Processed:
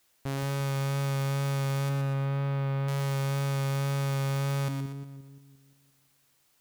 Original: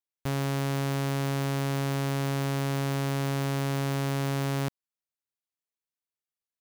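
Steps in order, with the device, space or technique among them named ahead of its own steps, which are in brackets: 1.89–2.88 s: distance through air 370 m; two-band feedback delay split 350 Hz, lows 174 ms, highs 120 ms, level -6 dB; plain cassette with noise reduction switched in (tape noise reduction on one side only decoder only; wow and flutter 14 cents; white noise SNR 38 dB); trim -3 dB

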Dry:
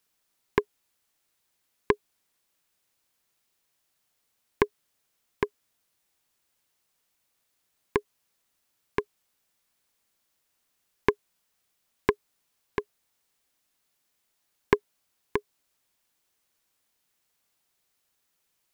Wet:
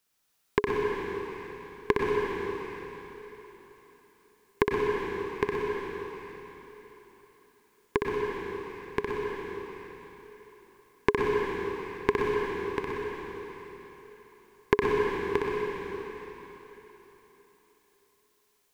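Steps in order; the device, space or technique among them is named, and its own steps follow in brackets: tunnel (flutter echo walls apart 10.6 m, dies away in 0.67 s; reverberation RT60 3.9 s, pre-delay 90 ms, DRR -2 dB); trim -1.5 dB

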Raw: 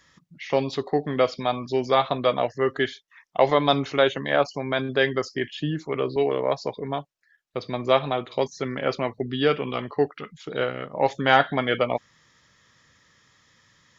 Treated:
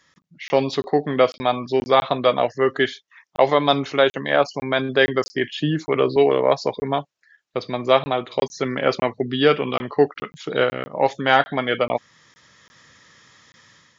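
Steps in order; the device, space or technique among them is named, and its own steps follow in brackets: call with lost packets (high-pass 130 Hz 6 dB/octave; resampled via 16 kHz; level rider gain up to 9.5 dB; lost packets of 20 ms random); 1.05–2.01 s: low-pass 5.3 kHz 12 dB/octave; trim -1 dB

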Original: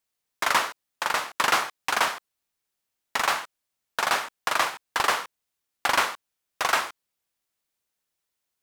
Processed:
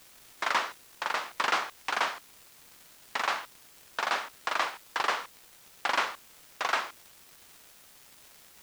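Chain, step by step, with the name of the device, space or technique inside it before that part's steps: 78 rpm shellac record (band-pass 200–5500 Hz; crackle 400 per s -38 dBFS; white noise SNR 22 dB); trim -5 dB

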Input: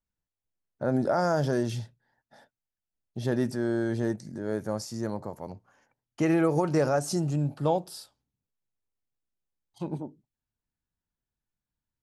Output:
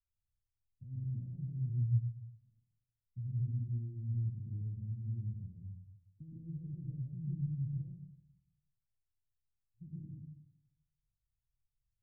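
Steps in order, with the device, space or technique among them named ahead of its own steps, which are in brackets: club heard from the street (peak limiter -23 dBFS, peak gain reduction 10.5 dB; low-pass 120 Hz 24 dB/octave; reverberation RT60 0.70 s, pre-delay 107 ms, DRR -4 dB); trim -1.5 dB

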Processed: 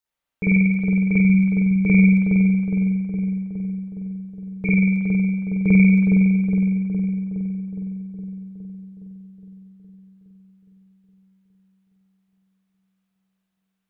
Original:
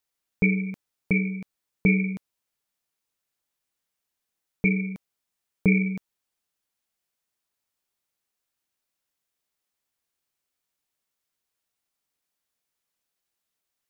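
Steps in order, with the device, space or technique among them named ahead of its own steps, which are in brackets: dub delay into a spring reverb (filtered feedback delay 414 ms, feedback 68%, low-pass 1.4 kHz, level -3.5 dB; spring tank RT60 1.1 s, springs 47 ms, chirp 45 ms, DRR -8 dB); trim -5.5 dB

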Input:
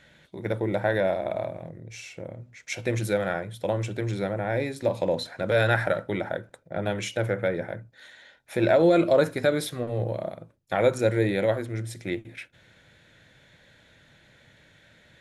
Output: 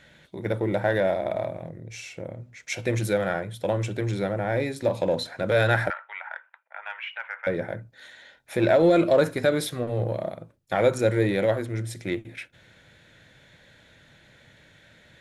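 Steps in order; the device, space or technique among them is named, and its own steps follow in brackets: 5.90–7.47 s: elliptic band-pass 910–2800 Hz, stop band 60 dB; parallel distortion (in parallel at -12 dB: hard clipper -26 dBFS, distortion -5 dB)

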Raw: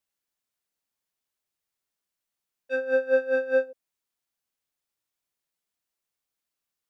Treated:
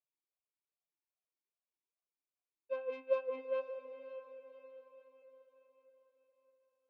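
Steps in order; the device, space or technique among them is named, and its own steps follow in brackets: 2.81–3.25 s: peaking EQ 2.6 kHz +9.5 dB 0.71 oct; talk box (valve stage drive 22 dB, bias 0.55; talking filter a-u 2.5 Hz); echo that smears into a reverb 566 ms, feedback 46%, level -11 dB; trim +1 dB

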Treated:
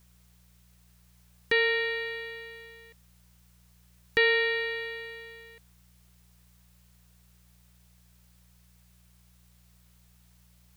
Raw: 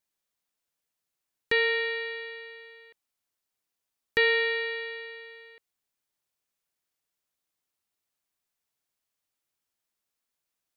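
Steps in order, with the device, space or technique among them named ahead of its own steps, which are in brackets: video cassette with head-switching buzz (mains buzz 60 Hz, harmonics 3, -61 dBFS -4 dB/octave; white noise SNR 31 dB)

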